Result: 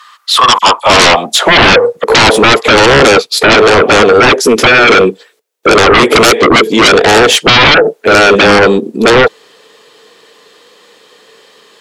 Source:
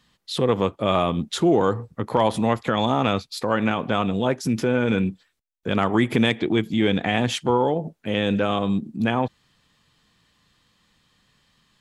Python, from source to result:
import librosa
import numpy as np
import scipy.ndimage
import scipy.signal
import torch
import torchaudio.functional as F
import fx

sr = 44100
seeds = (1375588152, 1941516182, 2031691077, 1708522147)

y = fx.dispersion(x, sr, late='lows', ms=47.0, hz=2900.0, at=(0.58, 2.04))
y = fx.filter_sweep_highpass(y, sr, from_hz=1200.0, to_hz=440.0, start_s=0.28, end_s=2.13, q=7.4)
y = fx.fold_sine(y, sr, drive_db=19, ceiling_db=0.5)
y = F.gain(torch.from_numpy(y), -2.0).numpy()